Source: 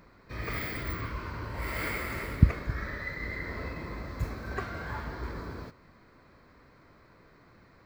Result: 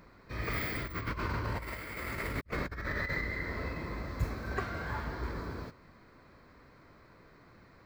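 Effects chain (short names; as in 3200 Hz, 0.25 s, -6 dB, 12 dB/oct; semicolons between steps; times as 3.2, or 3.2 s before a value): 0.82–3.23 negative-ratio compressor -38 dBFS, ratio -0.5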